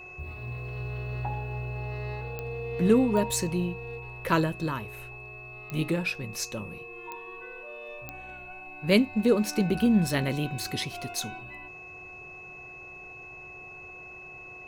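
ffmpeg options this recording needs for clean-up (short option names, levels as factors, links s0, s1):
-af "adeclick=t=4,bandreject=f=365.6:t=h:w=4,bandreject=f=731.2:t=h:w=4,bandreject=f=1096.8:t=h:w=4,bandreject=f=2600:w=30"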